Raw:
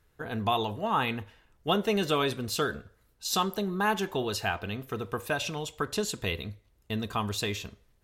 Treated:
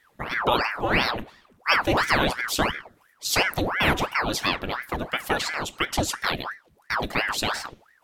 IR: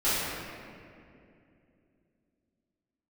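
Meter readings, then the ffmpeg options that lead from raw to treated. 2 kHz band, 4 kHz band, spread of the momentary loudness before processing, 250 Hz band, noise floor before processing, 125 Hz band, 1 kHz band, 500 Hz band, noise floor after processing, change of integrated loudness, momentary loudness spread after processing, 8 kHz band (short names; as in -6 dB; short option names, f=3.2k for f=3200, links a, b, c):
+10.5 dB, +6.0 dB, 10 LU, +2.0 dB, -67 dBFS, +2.0 dB, +5.5 dB, +2.0 dB, -62 dBFS, +6.0 dB, 10 LU, +5.0 dB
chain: -af "aeval=exprs='val(0)*sin(2*PI*1000*n/s+1000*0.9/2.9*sin(2*PI*2.9*n/s))':c=same,volume=8dB"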